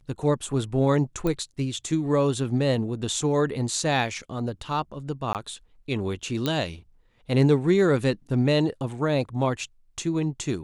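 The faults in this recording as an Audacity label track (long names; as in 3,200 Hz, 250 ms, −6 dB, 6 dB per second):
1.270000	1.270000	click −15 dBFS
5.330000	5.350000	drop-out 18 ms
6.460000	6.460000	click −12 dBFS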